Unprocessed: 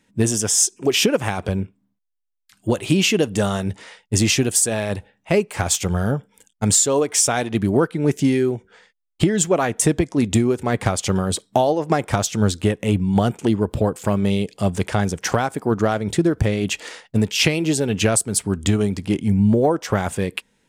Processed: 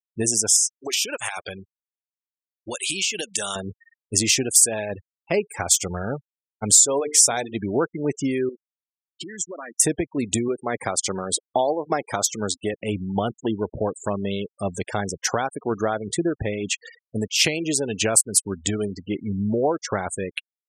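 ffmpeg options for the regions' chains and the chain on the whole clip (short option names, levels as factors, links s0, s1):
-filter_complex "[0:a]asettb=1/sr,asplit=3[s0][s1][s2];[s0]atrim=end=0.564[s3];[s1]atrim=start=0.56:end=3.56,asetpts=PTS-STARTPTS,afade=t=in:d=0.004:c=qsin,afade=t=out:st=2.996:d=0.004:c=qsin,tiltshelf=f=930:g=-9,acompressor=threshold=0.1:ratio=6:attack=3.2:release=140:knee=1:detection=peak[s4];[s2]atrim=start=3.556[s5];[s3][s4]acrossfade=d=0.004:c1=hsin:c2=qsin[s6];[s6][s5]acrossfade=d=0.004:c1=qsin:c2=hsin,asettb=1/sr,asplit=3[s7][s8][s9];[s7]atrim=end=6.814[s10];[s8]atrim=start=6.81:end=7.56,asetpts=PTS-STARTPTS,afade=t=in:d=0.004:c=qsin,afade=t=out:st=0.746:d=0.004:c=qsin,bandreject=f=50:t=h:w=6,bandreject=f=100:t=h:w=6,bandreject=f=150:t=h:w=6,bandreject=f=200:t=h:w=6,bandreject=f=250:t=h:w=6,bandreject=f=300:t=h:w=6,bandreject=f=350:t=h:w=6,bandreject=f=400:t=h:w=6,bandreject=f=450:t=h:w=6,adynamicequalizer=threshold=0.01:dfrequency=1300:dqfactor=2.7:tfrequency=1300:tqfactor=2.7:attack=5:release=100:ratio=0.375:range=3:mode=cutabove:tftype=bell[s11];[s9]atrim=start=7.556[s12];[s10][s11]acrossfade=d=0.004:c1=hsin:c2=qsin[s13];[s13][s12]acrossfade=d=0.004:c1=qsin:c2=hsin,asettb=1/sr,asplit=3[s14][s15][s16];[s14]atrim=end=8.494[s17];[s15]atrim=start=8.49:end=9.8,asetpts=PTS-STARTPTS,afade=t=in:d=0.004:c=qsin,afade=t=out:st=1.306:d=0.004:c=qsin,acompressor=threshold=0.0562:ratio=5:attack=3.2:release=140:knee=1:detection=peak,highpass=210,equalizer=f=440:t=q:w=4:g=-7,equalizer=f=780:t=q:w=4:g=-7,equalizer=f=1900:t=q:w=4:g=4,equalizer=f=5800:t=q:w=4:g=6,lowpass=f=9800:w=0.5412,lowpass=f=9800:w=1.3066[s18];[s16]atrim=start=9.796[s19];[s17][s18]acrossfade=d=0.004:c1=hsin:c2=qsin[s20];[s20][s19]acrossfade=d=0.004:c1=qsin:c2=hsin,asettb=1/sr,asplit=3[s21][s22][s23];[s21]atrim=end=10.484[s24];[s22]atrim=start=10.48:end=12.73,asetpts=PTS-STARTPTS,afade=t=in:d=0.004:c=qsin,afade=t=out:st=2.246:d=0.004:c=qsin,highpass=f=180:p=1,bandreject=f=2800:w=17[s25];[s23]atrim=start=12.726[s26];[s24][s25]acrossfade=d=0.004:c1=hsin:c2=qsin[s27];[s27][s26]acrossfade=d=0.004:c1=qsin:c2=hsin,bass=f=250:g=-8,treble=f=4000:g=6,afftfilt=real='re*gte(hypot(re,im),0.0501)':imag='im*gte(hypot(re,im),0.0501)':win_size=1024:overlap=0.75,volume=0.708"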